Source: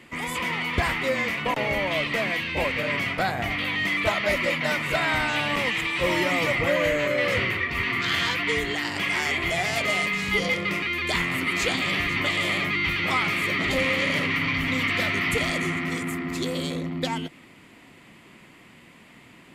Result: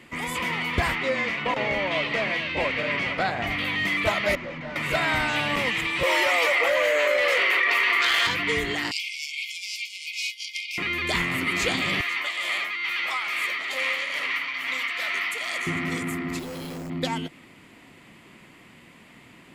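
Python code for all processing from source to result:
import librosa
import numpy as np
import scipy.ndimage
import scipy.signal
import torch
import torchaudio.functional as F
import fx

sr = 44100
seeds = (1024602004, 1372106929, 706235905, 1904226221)

y = fx.chain(x, sr, fx.lowpass(hz=5800.0, slope=12),
    fx.low_shelf(hz=140.0, db=-7.0),
    fx.echo_single(ms=463, db=-12.0), at=(0.95, 3.47))
y = fx.chain(y, sr, fx.clip_hard(threshold_db=-28.5),
    fx.spacing_loss(db_at_10k=36), at=(4.35, 4.76))
y = fx.chain(y, sr, fx.highpass(hz=460.0, slope=24),
    fx.clip_hard(threshold_db=-17.5),
    fx.env_flatten(amount_pct=100), at=(6.03, 8.27))
y = fx.chain(y, sr, fx.peak_eq(hz=5200.0, db=9.5, octaves=0.43),
    fx.over_compress(threshold_db=-28.0, ratio=-0.5),
    fx.brickwall_highpass(low_hz=2100.0), at=(8.91, 10.78))
y = fx.chain(y, sr, fx.tremolo_shape(shape='triangle', hz=2.3, depth_pct=45),
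    fx.highpass(hz=790.0, slope=12), at=(12.01, 15.67))
y = fx.chain(y, sr, fx.overload_stage(gain_db=33.0),
    fx.resample_bad(factor=6, down='filtered', up='hold'), at=(16.39, 16.9))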